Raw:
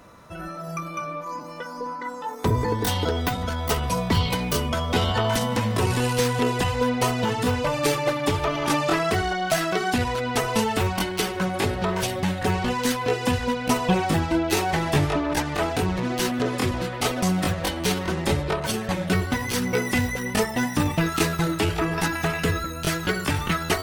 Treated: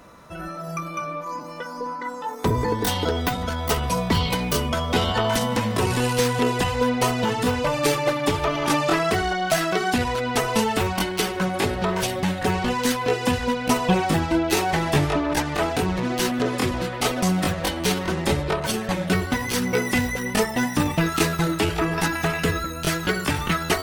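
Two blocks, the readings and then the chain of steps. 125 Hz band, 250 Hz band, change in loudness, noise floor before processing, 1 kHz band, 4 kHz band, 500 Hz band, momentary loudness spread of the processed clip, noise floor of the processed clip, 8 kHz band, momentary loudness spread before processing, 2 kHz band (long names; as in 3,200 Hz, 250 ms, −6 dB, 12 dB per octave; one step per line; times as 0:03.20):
−0.5 dB, +1.5 dB, +1.0 dB, −35 dBFS, +1.5 dB, +1.5 dB, +1.5 dB, 4 LU, −33 dBFS, +1.5 dB, 4 LU, +1.5 dB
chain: parametric band 100 Hz −6 dB 0.39 octaves
level +1.5 dB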